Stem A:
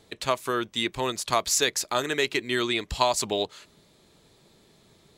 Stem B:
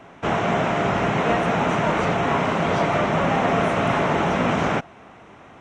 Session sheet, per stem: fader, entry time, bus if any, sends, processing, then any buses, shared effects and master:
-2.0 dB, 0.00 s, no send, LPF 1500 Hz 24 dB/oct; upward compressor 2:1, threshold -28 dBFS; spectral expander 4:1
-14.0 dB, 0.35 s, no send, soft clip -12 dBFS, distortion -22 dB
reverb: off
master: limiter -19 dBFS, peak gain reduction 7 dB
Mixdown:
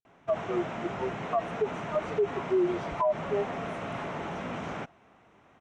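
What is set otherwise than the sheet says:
stem A -2.0 dB -> +8.5 dB; stem B: entry 0.35 s -> 0.05 s

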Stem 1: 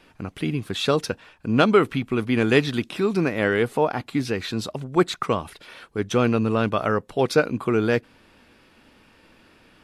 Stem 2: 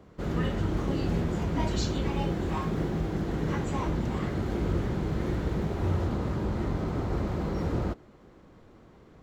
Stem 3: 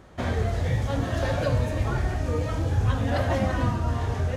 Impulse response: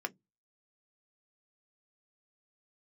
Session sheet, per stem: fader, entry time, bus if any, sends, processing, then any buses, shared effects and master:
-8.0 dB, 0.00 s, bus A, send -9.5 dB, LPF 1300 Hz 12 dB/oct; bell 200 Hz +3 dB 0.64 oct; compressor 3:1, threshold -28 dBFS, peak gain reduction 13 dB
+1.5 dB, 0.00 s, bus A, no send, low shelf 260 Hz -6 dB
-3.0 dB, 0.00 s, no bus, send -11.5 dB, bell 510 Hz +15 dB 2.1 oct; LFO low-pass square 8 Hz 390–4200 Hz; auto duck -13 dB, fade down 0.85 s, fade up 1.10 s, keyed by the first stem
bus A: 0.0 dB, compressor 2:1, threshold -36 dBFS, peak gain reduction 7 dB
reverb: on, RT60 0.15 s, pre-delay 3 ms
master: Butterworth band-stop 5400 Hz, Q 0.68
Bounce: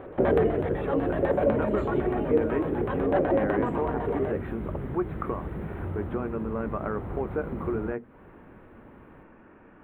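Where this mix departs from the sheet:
stem 1 -8.0 dB -> +1.5 dB; stem 2: missing low shelf 260 Hz -6 dB

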